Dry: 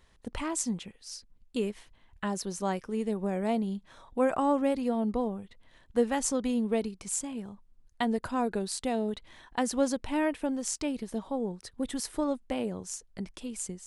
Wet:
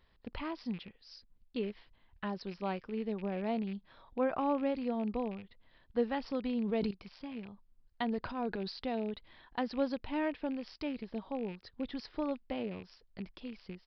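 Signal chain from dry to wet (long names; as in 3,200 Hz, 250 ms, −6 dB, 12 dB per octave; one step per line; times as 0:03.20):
loose part that buzzes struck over −42 dBFS, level −36 dBFS
0:08.12–0:08.85: transient designer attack −8 dB, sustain +6 dB
downsampling to 11,025 Hz
0:06.50–0:06.91: level that may fall only so fast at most 20 dB per second
level −5.5 dB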